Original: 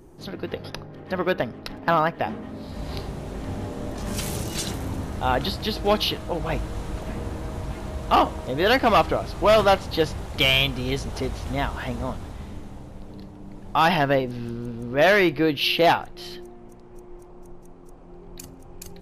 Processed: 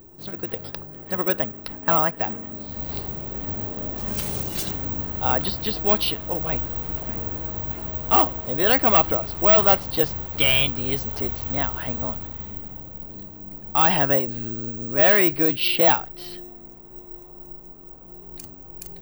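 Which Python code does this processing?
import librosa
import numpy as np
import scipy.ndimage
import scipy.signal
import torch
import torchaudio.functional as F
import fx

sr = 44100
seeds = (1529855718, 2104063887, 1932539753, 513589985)

y = (np.kron(x[::2], np.eye(2)[0]) * 2)[:len(x)]
y = y * 10.0 ** (-2.0 / 20.0)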